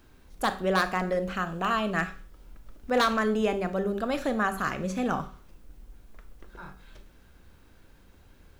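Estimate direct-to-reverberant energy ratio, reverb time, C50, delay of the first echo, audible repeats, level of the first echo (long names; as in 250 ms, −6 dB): 10.0 dB, 0.40 s, 13.5 dB, no echo audible, no echo audible, no echo audible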